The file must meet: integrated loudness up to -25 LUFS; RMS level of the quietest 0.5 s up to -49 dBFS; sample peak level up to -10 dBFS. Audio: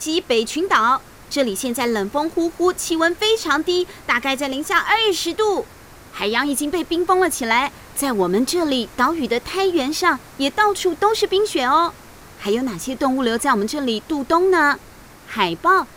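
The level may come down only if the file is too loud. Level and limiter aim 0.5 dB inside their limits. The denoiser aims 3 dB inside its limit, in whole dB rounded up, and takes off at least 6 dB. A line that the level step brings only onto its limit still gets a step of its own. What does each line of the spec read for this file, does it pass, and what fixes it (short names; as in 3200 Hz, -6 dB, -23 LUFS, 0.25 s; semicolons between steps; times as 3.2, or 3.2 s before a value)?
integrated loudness -19.0 LUFS: fail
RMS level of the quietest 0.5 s -43 dBFS: fail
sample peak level -3.5 dBFS: fail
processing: gain -6.5 dB; limiter -10.5 dBFS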